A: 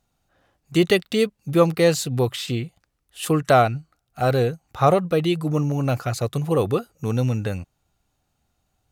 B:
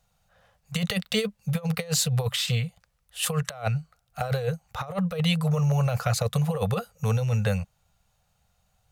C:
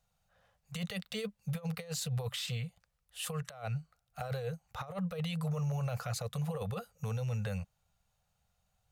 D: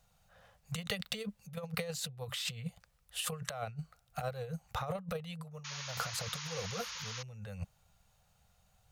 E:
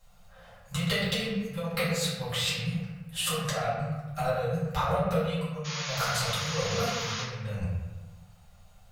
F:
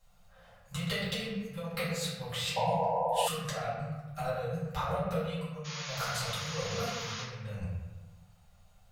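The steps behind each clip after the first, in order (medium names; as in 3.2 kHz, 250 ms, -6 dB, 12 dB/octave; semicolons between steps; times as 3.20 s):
Chebyshev band-stop 200–470 Hz, order 3; compressor with a negative ratio -24 dBFS, ratio -0.5
peak limiter -19.5 dBFS, peak gain reduction 8 dB; trim -8.5 dB
compressor with a negative ratio -41 dBFS, ratio -0.5; painted sound noise, 5.64–7.23 s, 860–6900 Hz -46 dBFS; trim +2 dB
reverberation RT60 1.2 s, pre-delay 3 ms, DRR -10 dB
painted sound noise, 2.56–3.28 s, 460–1000 Hz -24 dBFS; trim -5.5 dB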